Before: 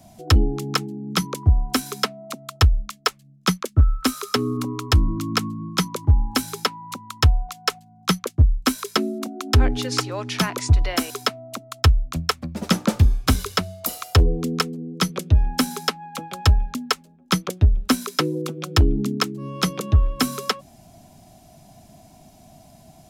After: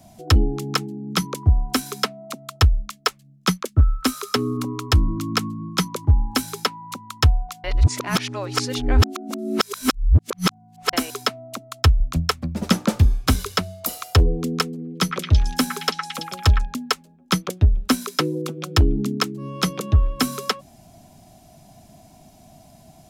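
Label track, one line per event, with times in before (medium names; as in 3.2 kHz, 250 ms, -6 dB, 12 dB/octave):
7.640000	10.930000	reverse
12.000000	12.720000	bass shelf 170 Hz +7.5 dB
14.680000	16.650000	repeats whose band climbs or falls 111 ms, band-pass from 1.6 kHz, each repeat 0.7 oct, level -2 dB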